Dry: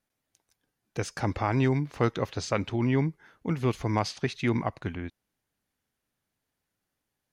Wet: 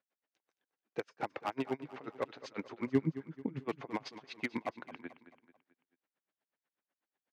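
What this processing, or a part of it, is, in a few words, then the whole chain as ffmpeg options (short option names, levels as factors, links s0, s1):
helicopter radio: -filter_complex "[0:a]highpass=320,lowpass=2700,aeval=exprs='val(0)*pow(10,-38*(0.5-0.5*cos(2*PI*8.1*n/s))/20)':c=same,asoftclip=type=hard:threshold=0.0447,highpass=110,asplit=3[s0][s1][s2];[s0]afade=t=out:st=2.86:d=0.02[s3];[s1]asubboost=boost=9:cutoff=250,afade=t=in:st=2.86:d=0.02,afade=t=out:st=3.59:d=0.02[s4];[s2]afade=t=in:st=3.59:d=0.02[s5];[s3][s4][s5]amix=inputs=3:normalize=0,aecho=1:1:219|438|657|876:0.2|0.0898|0.0404|0.0182,volume=1.12"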